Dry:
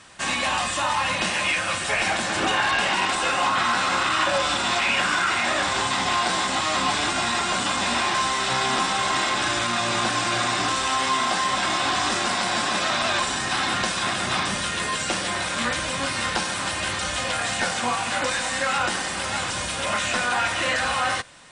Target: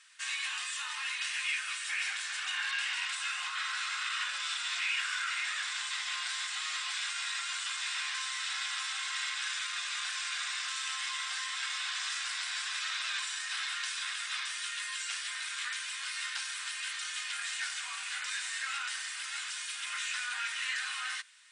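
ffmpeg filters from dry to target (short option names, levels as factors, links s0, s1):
-af "highpass=f=1500:w=0.5412,highpass=f=1500:w=1.3066,volume=0.355" -ar 44100 -c:a aac -b:a 128k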